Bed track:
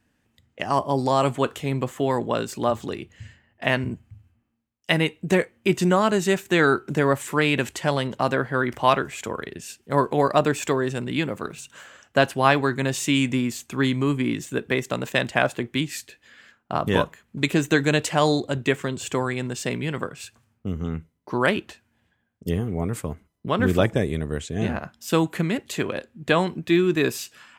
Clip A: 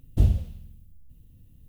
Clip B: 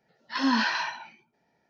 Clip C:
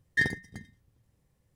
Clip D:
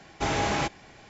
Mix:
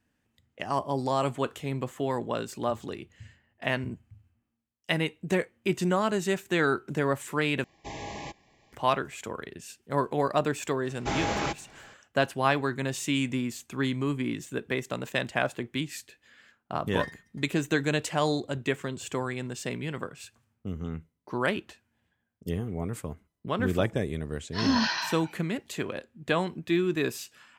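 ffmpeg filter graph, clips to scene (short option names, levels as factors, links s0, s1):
-filter_complex "[4:a]asplit=2[s0][s1];[0:a]volume=0.473[s2];[s0]asuperstop=centerf=1400:order=20:qfactor=2.9[s3];[2:a]bass=f=250:g=8,treble=f=4000:g=10[s4];[s2]asplit=2[s5][s6];[s5]atrim=end=7.644[s7];[s3]atrim=end=1.09,asetpts=PTS-STARTPTS,volume=0.251[s8];[s6]atrim=start=8.726[s9];[s1]atrim=end=1.09,asetpts=PTS-STARTPTS,volume=0.708,afade=t=in:d=0.004:c=hsin,afade=t=out:st=1.086:d=0.004:c=hsin,adelay=10850[s10];[3:a]atrim=end=1.55,asetpts=PTS-STARTPTS,volume=0.224,afade=t=in:d=0.004:c=hsin,afade=t=out:st=1.546:d=0.004:c=hsin,adelay=16820[s11];[s4]atrim=end=1.69,asetpts=PTS-STARTPTS,volume=0.631,afade=t=in:d=0.004:c=hsin,afade=t=out:st=1.686:d=0.004:c=hsin,adelay=24230[s12];[s7][s8]acrossfade=d=0.004:c1=hsin:c2=hsin[s13];[s13][s9]acrossfade=d=0.004:c1=hsin:c2=hsin[s14];[s14][s10][s11][s12]amix=inputs=4:normalize=0"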